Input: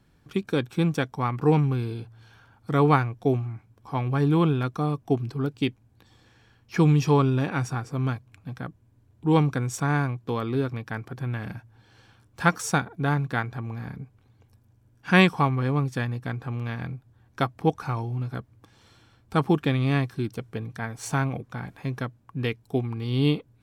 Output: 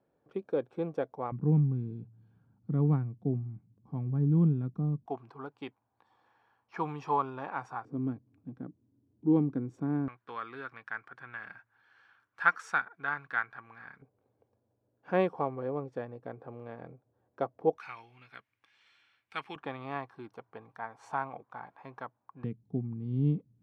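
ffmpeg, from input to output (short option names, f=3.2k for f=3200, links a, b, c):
-af "asetnsamples=n=441:p=0,asendcmd='1.32 bandpass f 180;5.06 bandpass f 930;7.85 bandpass f 280;10.08 bandpass f 1500;14.02 bandpass f 530;17.78 bandpass f 2300;19.56 bandpass f 910;22.44 bandpass f 180',bandpass=f=550:t=q:w=2.4:csg=0"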